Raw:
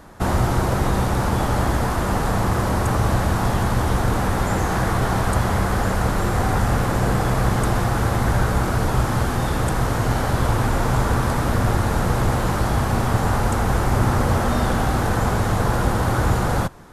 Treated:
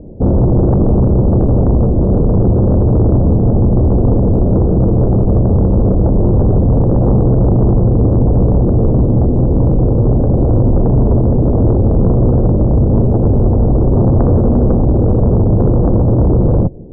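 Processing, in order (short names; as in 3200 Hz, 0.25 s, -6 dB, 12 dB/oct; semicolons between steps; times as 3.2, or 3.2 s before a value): steep low-pass 530 Hz 36 dB/oct; sine folder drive 10 dB, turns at -6 dBFS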